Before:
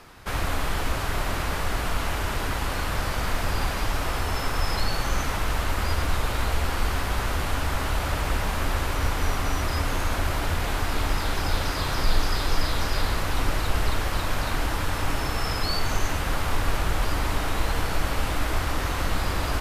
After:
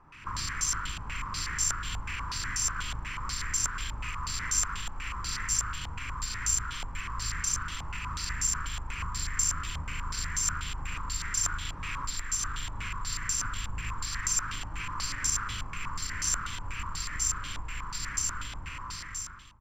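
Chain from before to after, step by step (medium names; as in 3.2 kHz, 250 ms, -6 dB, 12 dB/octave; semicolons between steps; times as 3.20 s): fade out at the end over 2.82 s; doubling 39 ms -3.5 dB; compression 5:1, threshold -28 dBFS, peak gain reduction 14 dB; FFT filter 150 Hz 0 dB, 290 Hz -8 dB, 720 Hz -26 dB, 1 kHz +1 dB; harmony voices +7 st -13 dB; delay 112 ms -5.5 dB; harmony voices +12 st -10 dB; careless resampling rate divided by 6×, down filtered, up zero stuff; step-sequenced low-pass 8.2 Hz 800–6000 Hz; trim -7.5 dB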